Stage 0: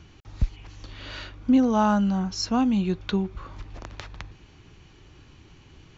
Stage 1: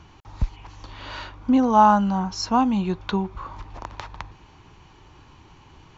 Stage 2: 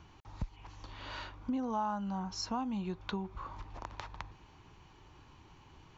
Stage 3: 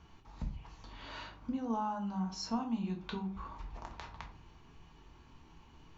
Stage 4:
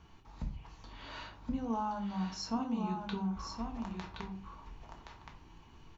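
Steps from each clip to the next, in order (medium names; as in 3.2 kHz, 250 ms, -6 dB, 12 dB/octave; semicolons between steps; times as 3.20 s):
peaking EQ 940 Hz +12.5 dB 0.73 oct
compression 3:1, threshold -27 dBFS, peak gain reduction 12.5 dB; trim -8 dB
reverberation RT60 0.40 s, pre-delay 4 ms, DRR 1.5 dB; trim -4.5 dB
delay 1071 ms -5.5 dB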